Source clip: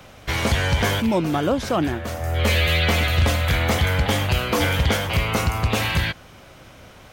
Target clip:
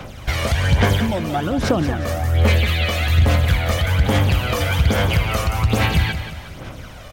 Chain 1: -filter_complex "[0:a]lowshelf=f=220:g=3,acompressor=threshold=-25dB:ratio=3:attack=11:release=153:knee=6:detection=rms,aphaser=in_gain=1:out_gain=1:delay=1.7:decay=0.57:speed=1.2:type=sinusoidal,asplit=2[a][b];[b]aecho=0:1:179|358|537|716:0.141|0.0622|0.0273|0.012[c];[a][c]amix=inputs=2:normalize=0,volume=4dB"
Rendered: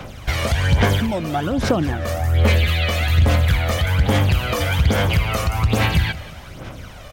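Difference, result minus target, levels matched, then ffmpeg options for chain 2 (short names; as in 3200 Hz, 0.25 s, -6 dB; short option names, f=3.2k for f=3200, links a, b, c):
echo-to-direct -7 dB
-filter_complex "[0:a]lowshelf=f=220:g=3,acompressor=threshold=-25dB:ratio=3:attack=11:release=153:knee=6:detection=rms,aphaser=in_gain=1:out_gain=1:delay=1.7:decay=0.57:speed=1.2:type=sinusoidal,asplit=2[a][b];[b]aecho=0:1:179|358|537|716|895:0.316|0.139|0.0612|0.0269|0.0119[c];[a][c]amix=inputs=2:normalize=0,volume=4dB"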